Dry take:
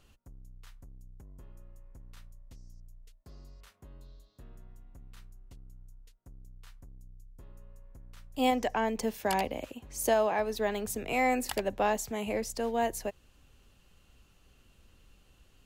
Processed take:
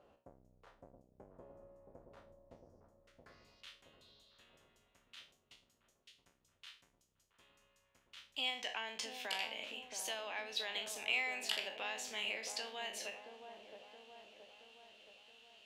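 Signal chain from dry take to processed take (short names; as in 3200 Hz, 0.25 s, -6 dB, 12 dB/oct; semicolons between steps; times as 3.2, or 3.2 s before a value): spectral trails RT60 0.34 s; compressor 4:1, threshold -33 dBFS, peak gain reduction 10.5 dB; band-pass sweep 600 Hz -> 3100 Hz, 2.7–3.61; dark delay 0.673 s, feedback 57%, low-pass 810 Hz, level -4.5 dB; gain +9 dB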